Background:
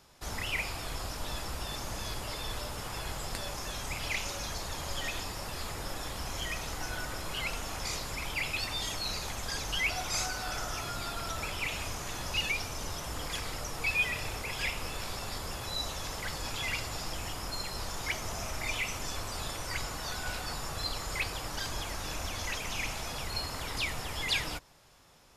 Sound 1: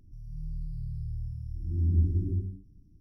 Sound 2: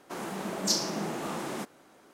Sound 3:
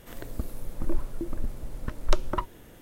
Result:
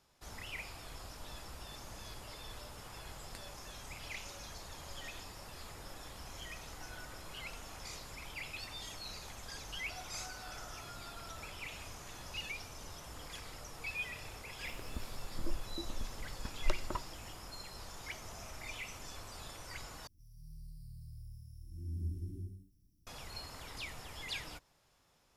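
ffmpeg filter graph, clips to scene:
-filter_complex "[0:a]volume=-11dB[a];[3:a]aresample=32000,aresample=44100[b];[1:a]crystalizer=i=10:c=0[c];[a]asplit=2[d][e];[d]atrim=end=20.074[f];[c]atrim=end=3,asetpts=PTS-STARTPTS,volume=-14.5dB[g];[e]atrim=start=23.066[h];[b]atrim=end=2.81,asetpts=PTS-STARTPTS,volume=-10.5dB,afade=t=in:d=0.004:c=hsin,afade=t=out:st=2.806:d=0.004:c=hsin,adelay=14570[i];[f][g]acrossfade=d=0.004:c1=hsin:c2=hsin[j];[j][h]acrossfade=d=0.004:c1=hsin:c2=hsin[k];[k][i]amix=inputs=2:normalize=0"

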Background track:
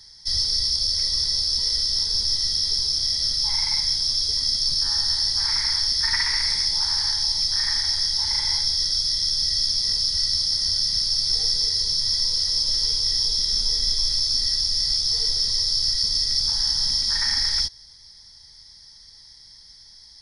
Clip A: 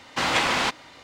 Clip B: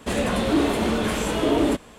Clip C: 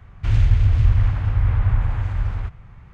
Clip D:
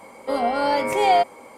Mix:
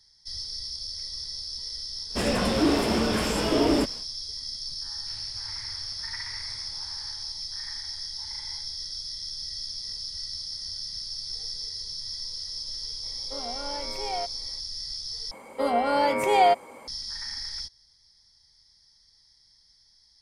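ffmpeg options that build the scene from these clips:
-filter_complex "[4:a]asplit=2[a][b];[0:a]volume=-13dB[c];[3:a]highpass=f=800:p=1[d];[c]asplit=2[e][f];[e]atrim=end=15.314[g];[b]atrim=end=1.57,asetpts=PTS-STARTPTS,volume=-2dB[h];[f]atrim=start=16.876[i];[2:a]atrim=end=1.98,asetpts=PTS-STARTPTS,volume=-2dB,afade=t=in:d=0.1,afade=t=out:st=1.88:d=0.1,adelay=2090[j];[d]atrim=end=2.93,asetpts=PTS-STARTPTS,volume=-17.5dB,afade=t=in:d=0.004:c=hsin,afade=t=out:st=2.926:d=0.004:c=hsin,adelay=4830[k];[a]atrim=end=1.57,asetpts=PTS-STARTPTS,volume=-15.5dB,afade=t=in:d=0.004:c=hsin,afade=t=out:st=1.566:d=0.004:c=hsin,adelay=13030[l];[g][h]acrossfade=d=0.004:c1=hsin:c2=hsin[m];[m][i]acrossfade=d=0.004:c1=hsin:c2=hsin[n];[n][j][k][l]amix=inputs=4:normalize=0"

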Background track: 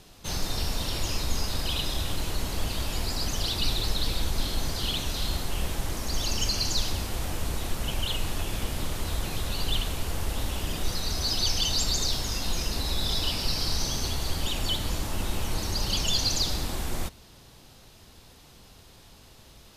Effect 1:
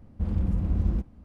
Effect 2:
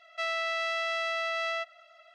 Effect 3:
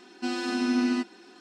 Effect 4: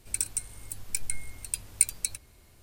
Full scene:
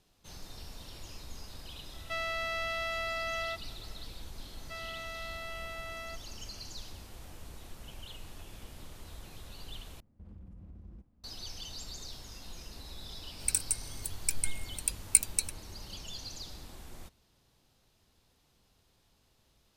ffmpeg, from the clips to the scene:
-filter_complex "[2:a]asplit=2[a][b];[0:a]volume=-17.5dB[c];[1:a]acompressor=threshold=-29dB:ratio=6:attack=3.2:release=140:knee=1:detection=peak[d];[c]asplit=2[e][f];[e]atrim=end=10.004[g];[d]atrim=end=1.24,asetpts=PTS-STARTPTS,volume=-17dB[h];[f]atrim=start=11.236[i];[a]atrim=end=2.14,asetpts=PTS-STARTPTS,volume=-4dB,afade=t=in:d=0.004:c=hsin,afade=t=out:st=2.136:d=0.004:c=hsin,adelay=1920[j];[b]atrim=end=2.14,asetpts=PTS-STARTPTS,volume=-11.5dB,afade=t=in:d=0.004:c=hsin,afade=t=out:st=2.136:d=0.004:c=hsin,adelay=4520[k];[4:a]atrim=end=2.62,asetpts=PTS-STARTPTS,afade=t=in:d=0.004:c=hsin,afade=t=out:st=2.616:d=0.004:c=hsin,adelay=13340[l];[g][h]acrossfade=d=0.004:c1=hsin:c2=hsin[m];[m][i]acrossfade=d=0.004:c1=hsin:c2=hsin[n];[n][j][k][l]amix=inputs=4:normalize=0"

